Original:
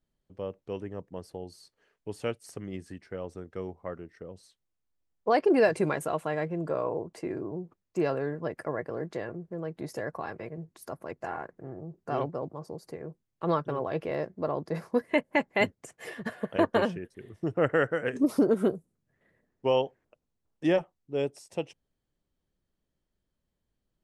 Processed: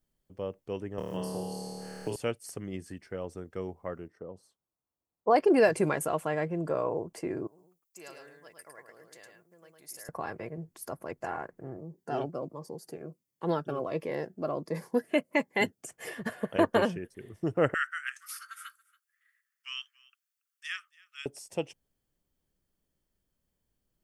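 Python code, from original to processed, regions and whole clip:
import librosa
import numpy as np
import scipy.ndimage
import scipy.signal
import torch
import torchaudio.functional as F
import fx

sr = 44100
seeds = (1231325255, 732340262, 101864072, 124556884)

y = fx.chain(x, sr, fx.room_flutter(wall_m=4.6, rt60_s=1.3),
    fx.band_squash(depth_pct=100), at=(0.98, 2.16))
y = fx.chain(y, sr, fx.highpass(hz=120.0, slope=6),
    fx.high_shelf_res(hz=1500.0, db=-10.0, q=1.5), at=(4.08, 5.36))
y = fx.chain(y, sr, fx.pre_emphasis(coefficient=0.97),
    fx.echo_single(ms=107, db=-4.5), at=(7.47, 10.09))
y = fx.chain(y, sr, fx.highpass(hz=150.0, slope=12),
    fx.notch_cascade(direction='falling', hz=1.4), at=(11.77, 15.89))
y = fx.chain(y, sr, fx.steep_highpass(hz=1200.0, slope=96),
    fx.echo_single(ms=281, db=-23.5), at=(17.74, 21.26))
y = fx.high_shelf(y, sr, hz=8200.0, db=10.5)
y = fx.notch(y, sr, hz=3900.0, q=13.0)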